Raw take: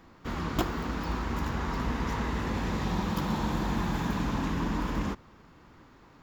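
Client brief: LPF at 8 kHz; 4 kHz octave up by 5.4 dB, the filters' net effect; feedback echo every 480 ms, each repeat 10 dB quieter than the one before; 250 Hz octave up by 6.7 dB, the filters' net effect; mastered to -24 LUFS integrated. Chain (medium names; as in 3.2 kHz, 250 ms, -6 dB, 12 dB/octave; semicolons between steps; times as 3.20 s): low-pass 8 kHz; peaking EQ 250 Hz +8.5 dB; peaking EQ 4 kHz +7 dB; feedback delay 480 ms, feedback 32%, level -10 dB; trim +3 dB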